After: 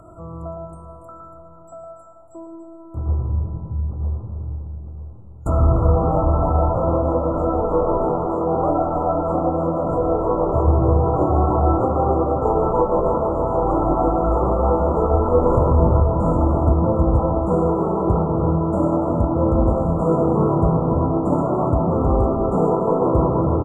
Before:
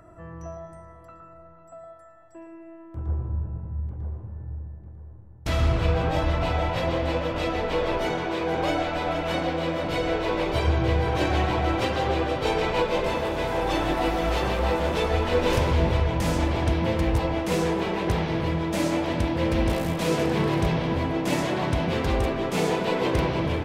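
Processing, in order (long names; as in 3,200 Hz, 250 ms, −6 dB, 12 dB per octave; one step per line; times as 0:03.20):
single-tap delay 284 ms −11 dB
treble cut that deepens with the level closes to 2,600 Hz, closed at −22 dBFS
brick-wall band-stop 1,400–6,800 Hz
level +6.5 dB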